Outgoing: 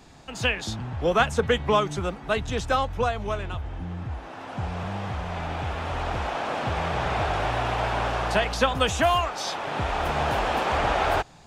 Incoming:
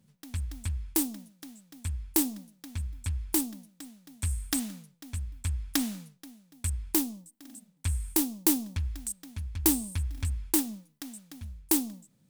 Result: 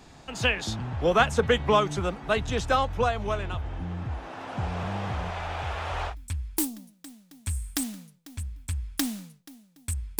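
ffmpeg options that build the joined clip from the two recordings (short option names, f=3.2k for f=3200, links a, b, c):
-filter_complex "[0:a]asettb=1/sr,asplit=3[a][b][c];[a]atrim=end=5.304[d];[b]atrim=start=5.3:end=6.15,asetpts=PTS-STARTPTS,afade=t=in:d=0.004:c=qsin,afade=t=out:st=0.846:d=0.004:c=qsin,equalizer=f=220:w=1.1:g=-14.5[e];[c]atrim=start=6.146[f];[d][e]acrossfade=d=0.004:c1=hsin:c2=qsin[g];[g][f]acrossfade=d=0.004:c1=qsin:c2=hsin,apad=whole_dur=10.19,atrim=end=10.19,atrim=end=6.15,asetpts=PTS-STARTPTS[h];[1:a]atrim=start=2.81:end=6.95,asetpts=PTS-STARTPTS[i];[h][i]acrossfade=d=0.1:c1=tri:c2=tri"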